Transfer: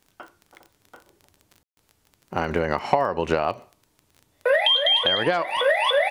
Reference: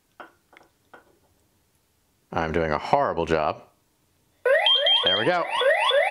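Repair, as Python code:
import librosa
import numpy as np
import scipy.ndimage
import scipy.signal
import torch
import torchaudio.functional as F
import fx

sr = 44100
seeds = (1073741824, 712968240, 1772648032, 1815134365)

y = fx.fix_declick_ar(x, sr, threshold=6.5)
y = fx.fix_ambience(y, sr, seeds[0], print_start_s=3.84, print_end_s=4.34, start_s=1.63, end_s=1.77)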